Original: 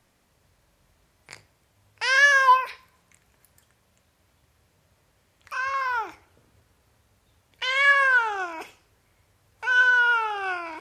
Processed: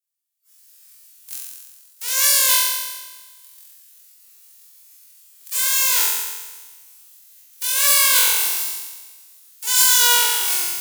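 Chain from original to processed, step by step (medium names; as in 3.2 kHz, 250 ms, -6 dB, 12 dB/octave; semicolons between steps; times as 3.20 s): formants flattened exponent 0.1; vibrato 3.6 Hz 17 cents; pre-emphasis filter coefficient 0.97; level rider gain up to 10 dB; hard clipper -6.5 dBFS, distortion -26 dB; on a send: flutter echo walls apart 3.9 m, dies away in 1.3 s; on the sum: spectral noise reduction 21 dB; trim -2.5 dB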